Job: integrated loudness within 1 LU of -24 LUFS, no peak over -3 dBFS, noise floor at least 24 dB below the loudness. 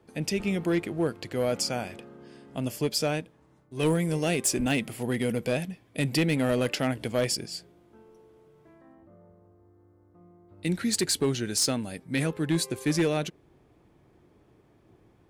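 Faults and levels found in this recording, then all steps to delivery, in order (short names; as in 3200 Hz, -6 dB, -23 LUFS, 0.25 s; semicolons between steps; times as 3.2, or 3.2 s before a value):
clipped 0.4%; flat tops at -18.5 dBFS; loudness -28.0 LUFS; peak -18.5 dBFS; loudness target -24.0 LUFS
-> clip repair -18.5 dBFS; gain +4 dB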